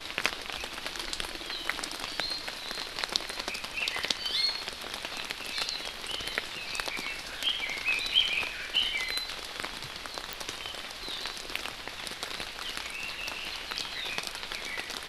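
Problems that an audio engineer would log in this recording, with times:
10.33 s: pop

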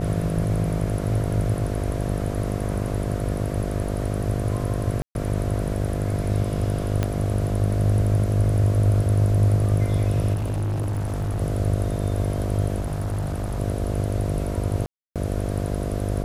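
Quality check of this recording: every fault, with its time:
buzz 50 Hz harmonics 14 -27 dBFS
5.02–5.15 s: dropout 131 ms
7.03 s: pop -10 dBFS
10.33–11.41 s: clipped -22.5 dBFS
12.79–13.60 s: clipped -22.5 dBFS
14.86–15.16 s: dropout 297 ms

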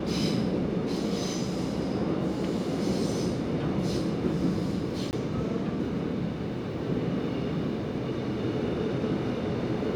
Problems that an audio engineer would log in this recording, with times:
5.11–5.13 s: dropout 19 ms

